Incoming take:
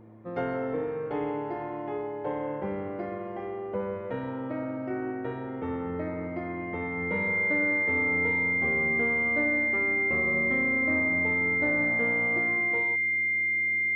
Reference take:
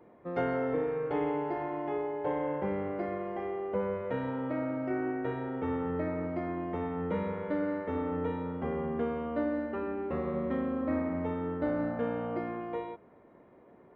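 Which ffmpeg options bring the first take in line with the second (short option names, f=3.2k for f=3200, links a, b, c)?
-af "bandreject=f=109.6:t=h:w=4,bandreject=f=219.2:t=h:w=4,bandreject=f=328.8:t=h:w=4,bandreject=f=2.1k:w=30"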